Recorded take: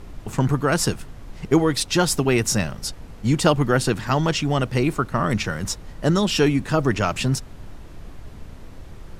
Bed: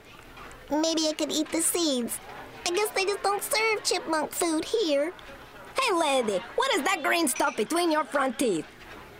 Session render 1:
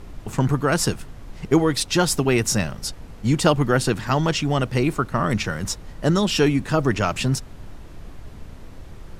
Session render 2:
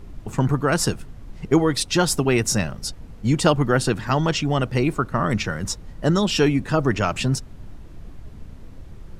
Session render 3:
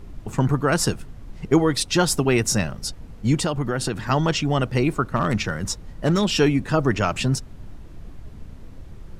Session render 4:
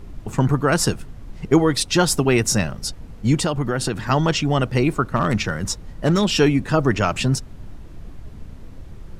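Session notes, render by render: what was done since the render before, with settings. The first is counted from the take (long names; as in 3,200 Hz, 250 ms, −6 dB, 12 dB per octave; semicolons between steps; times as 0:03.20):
no processing that can be heard
broadband denoise 6 dB, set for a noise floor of −40 dBFS
0:03.36–0:04.03: downward compressor 4 to 1, threshold −20 dBFS; 0:05.16–0:06.26: hard clipping −14 dBFS
level +2 dB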